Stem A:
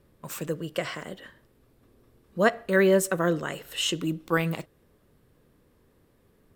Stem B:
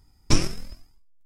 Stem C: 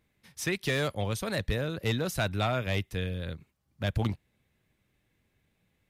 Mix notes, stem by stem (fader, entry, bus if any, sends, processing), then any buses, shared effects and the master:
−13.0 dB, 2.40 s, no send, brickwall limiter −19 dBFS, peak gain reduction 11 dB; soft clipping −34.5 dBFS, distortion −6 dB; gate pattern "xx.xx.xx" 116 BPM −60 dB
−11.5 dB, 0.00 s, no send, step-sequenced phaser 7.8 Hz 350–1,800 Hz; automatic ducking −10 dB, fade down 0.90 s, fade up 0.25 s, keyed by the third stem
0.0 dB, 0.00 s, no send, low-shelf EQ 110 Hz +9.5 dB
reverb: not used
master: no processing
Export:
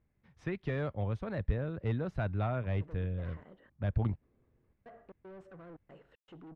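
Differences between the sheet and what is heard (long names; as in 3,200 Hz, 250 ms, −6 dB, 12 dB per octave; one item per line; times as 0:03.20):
stem B: muted
stem C 0.0 dB → −6.0 dB
master: extra low-pass filter 1,500 Hz 12 dB per octave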